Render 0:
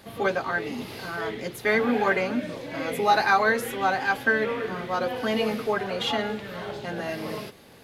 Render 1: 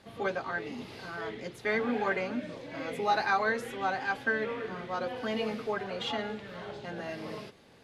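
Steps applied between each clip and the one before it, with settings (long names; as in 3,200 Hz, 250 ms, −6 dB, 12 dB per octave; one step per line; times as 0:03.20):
Bessel low-pass filter 7,600 Hz, order 4
level −7 dB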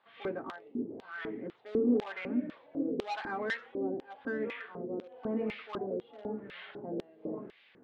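auto-filter low-pass sine 0.95 Hz 390–2,300 Hz
in parallel at −3.5 dB: hard clipping −26 dBFS, distortion −8 dB
on the sum: auto-filter band-pass square 2 Hz 290–3,400 Hz
level +1.5 dB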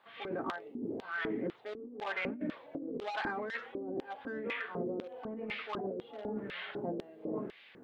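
compressor whose output falls as the input rises −39 dBFS, ratio −1
level +1 dB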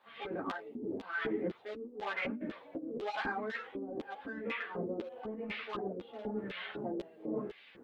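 string-ensemble chorus
level +2.5 dB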